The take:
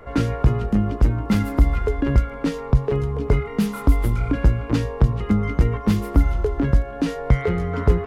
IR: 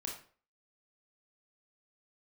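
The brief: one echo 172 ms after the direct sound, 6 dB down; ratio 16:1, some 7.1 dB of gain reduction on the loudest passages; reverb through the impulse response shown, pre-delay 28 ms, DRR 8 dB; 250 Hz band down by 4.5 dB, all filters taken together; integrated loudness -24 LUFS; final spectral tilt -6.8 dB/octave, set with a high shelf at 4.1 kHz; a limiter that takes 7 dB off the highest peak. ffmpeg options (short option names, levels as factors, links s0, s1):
-filter_complex "[0:a]equalizer=f=250:t=o:g=-6,highshelf=f=4100:g=5,acompressor=threshold=0.158:ratio=16,alimiter=limit=0.168:level=0:latency=1,aecho=1:1:172:0.501,asplit=2[s0][s1];[1:a]atrim=start_sample=2205,adelay=28[s2];[s1][s2]afir=irnorm=-1:irlink=0,volume=0.422[s3];[s0][s3]amix=inputs=2:normalize=0,volume=1.12"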